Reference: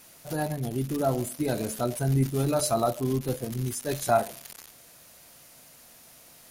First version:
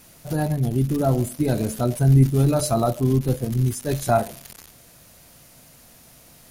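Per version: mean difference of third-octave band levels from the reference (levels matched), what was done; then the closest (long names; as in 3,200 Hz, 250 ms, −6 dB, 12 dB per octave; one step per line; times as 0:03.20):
4.0 dB: low-shelf EQ 240 Hz +11.5 dB
level +1.5 dB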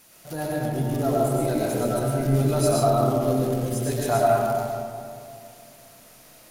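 6.5 dB: comb and all-pass reverb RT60 2.5 s, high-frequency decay 0.3×, pre-delay 70 ms, DRR −5 dB
level −2 dB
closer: first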